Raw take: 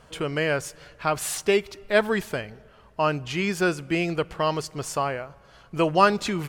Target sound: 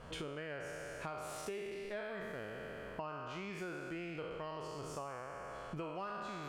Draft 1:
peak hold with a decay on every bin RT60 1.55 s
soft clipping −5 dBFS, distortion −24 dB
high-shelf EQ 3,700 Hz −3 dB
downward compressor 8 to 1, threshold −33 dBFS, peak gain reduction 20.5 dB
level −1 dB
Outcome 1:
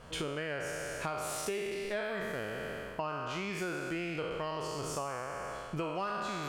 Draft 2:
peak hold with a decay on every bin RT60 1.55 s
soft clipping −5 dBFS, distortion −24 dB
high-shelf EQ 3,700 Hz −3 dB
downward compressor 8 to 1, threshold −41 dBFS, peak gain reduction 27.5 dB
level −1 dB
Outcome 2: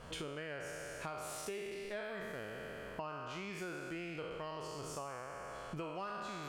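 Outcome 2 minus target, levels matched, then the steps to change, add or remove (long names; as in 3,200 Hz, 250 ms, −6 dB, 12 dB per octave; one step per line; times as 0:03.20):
8,000 Hz band +4.0 dB
change: high-shelf EQ 3,700 Hz −9.5 dB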